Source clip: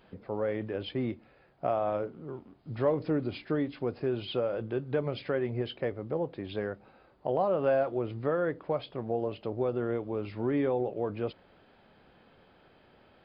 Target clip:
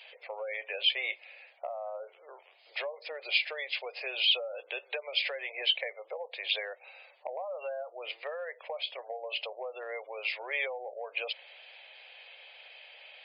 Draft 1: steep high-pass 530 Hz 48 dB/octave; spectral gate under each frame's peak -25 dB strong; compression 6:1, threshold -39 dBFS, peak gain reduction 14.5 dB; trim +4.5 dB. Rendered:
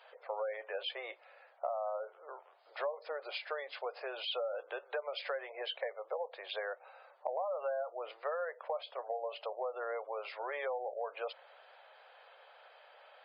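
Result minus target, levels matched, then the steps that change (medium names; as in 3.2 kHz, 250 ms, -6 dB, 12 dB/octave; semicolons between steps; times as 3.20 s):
4 kHz band -7.5 dB
add after compression: resonant high shelf 1.8 kHz +9.5 dB, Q 3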